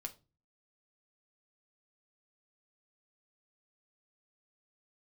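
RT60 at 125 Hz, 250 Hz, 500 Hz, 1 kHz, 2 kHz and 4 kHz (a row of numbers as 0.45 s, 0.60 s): 0.60 s, 0.45 s, 0.35 s, 0.25 s, 0.25 s, 0.25 s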